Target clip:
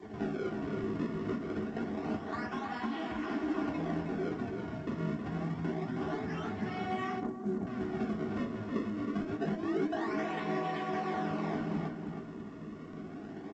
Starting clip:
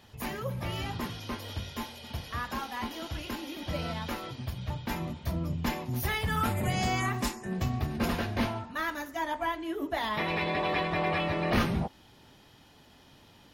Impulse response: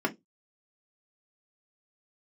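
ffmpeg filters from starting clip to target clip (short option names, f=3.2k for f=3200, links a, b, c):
-filter_complex "[0:a]highshelf=f=4.9k:g=4,acompressor=threshold=-43dB:ratio=16,acrusher=samples=32:mix=1:aa=0.000001:lfo=1:lforange=51.2:lforate=0.26,flanger=delay=8.7:depth=8.6:regen=-32:speed=0.45:shape=triangular,asplit=2[a][b];[b]adelay=318,lowpass=f=3.9k:p=1,volume=-5dB,asplit=2[c][d];[d]adelay=318,lowpass=f=3.9k:p=1,volume=0.34,asplit=2[e][f];[f]adelay=318,lowpass=f=3.9k:p=1,volume=0.34,asplit=2[g][h];[h]adelay=318,lowpass=f=3.9k:p=1,volume=0.34[i];[a][c][e][g][i]amix=inputs=5:normalize=0,asettb=1/sr,asplit=3[j][k][l];[j]atrim=end=7.204[m];[k]atrim=start=7.2:end=7.67,asetpts=PTS-STARTPTS,afade=t=in:d=0.004:c=qsin,afade=t=out:st=0.466:d=0.004:c=qsin,adynamicsmooth=sensitivity=6.5:basefreq=540[n];[l]atrim=start=7.666[o];[m][n]acrossfade=d=0.004:c1=hsin:c2=qsin[p];[p][o]acrossfade=d=0.004:c1=qsin:c2=hsin[q];[1:a]atrim=start_sample=2205[r];[q][r]afir=irnorm=-1:irlink=0,volume=3dB" -ar 16000 -c:a pcm_alaw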